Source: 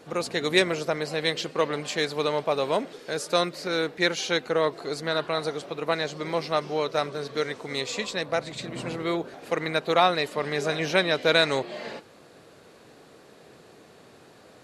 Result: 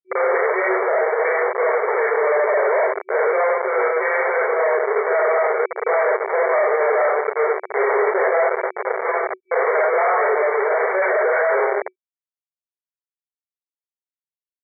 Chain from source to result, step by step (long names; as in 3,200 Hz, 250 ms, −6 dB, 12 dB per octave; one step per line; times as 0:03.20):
reverb reduction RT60 1.1 s
comb and all-pass reverb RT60 0.8 s, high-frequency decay 0.65×, pre-delay 5 ms, DRR −3 dB
comparator with hysteresis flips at −26.5 dBFS
speech leveller 2 s
brick-wall band-pass 370–2,300 Hz
level +8 dB